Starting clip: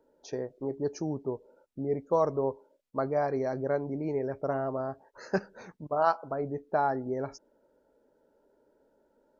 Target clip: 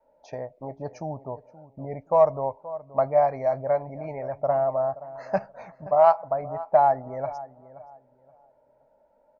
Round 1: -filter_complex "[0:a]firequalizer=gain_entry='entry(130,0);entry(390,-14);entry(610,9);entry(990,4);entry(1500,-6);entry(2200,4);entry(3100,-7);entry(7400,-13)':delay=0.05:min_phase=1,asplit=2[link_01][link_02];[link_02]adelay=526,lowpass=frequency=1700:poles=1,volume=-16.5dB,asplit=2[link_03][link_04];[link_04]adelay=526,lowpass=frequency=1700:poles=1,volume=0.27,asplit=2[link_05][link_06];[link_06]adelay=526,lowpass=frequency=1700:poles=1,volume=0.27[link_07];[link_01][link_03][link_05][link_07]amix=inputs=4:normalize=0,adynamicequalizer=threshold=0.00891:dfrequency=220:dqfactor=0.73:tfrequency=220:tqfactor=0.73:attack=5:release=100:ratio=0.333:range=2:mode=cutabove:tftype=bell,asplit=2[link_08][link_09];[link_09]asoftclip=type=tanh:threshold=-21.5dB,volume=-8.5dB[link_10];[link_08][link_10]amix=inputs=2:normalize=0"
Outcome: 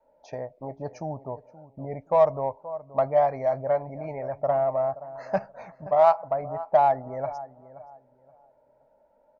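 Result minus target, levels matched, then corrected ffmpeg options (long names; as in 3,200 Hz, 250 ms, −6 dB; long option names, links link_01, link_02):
soft clipping: distortion +11 dB
-filter_complex "[0:a]firequalizer=gain_entry='entry(130,0);entry(390,-14);entry(610,9);entry(990,4);entry(1500,-6);entry(2200,4);entry(3100,-7);entry(7400,-13)':delay=0.05:min_phase=1,asplit=2[link_01][link_02];[link_02]adelay=526,lowpass=frequency=1700:poles=1,volume=-16.5dB,asplit=2[link_03][link_04];[link_04]adelay=526,lowpass=frequency=1700:poles=1,volume=0.27,asplit=2[link_05][link_06];[link_06]adelay=526,lowpass=frequency=1700:poles=1,volume=0.27[link_07];[link_01][link_03][link_05][link_07]amix=inputs=4:normalize=0,adynamicequalizer=threshold=0.00891:dfrequency=220:dqfactor=0.73:tfrequency=220:tqfactor=0.73:attack=5:release=100:ratio=0.333:range=2:mode=cutabove:tftype=bell,asplit=2[link_08][link_09];[link_09]asoftclip=type=tanh:threshold=-11.5dB,volume=-8.5dB[link_10];[link_08][link_10]amix=inputs=2:normalize=0"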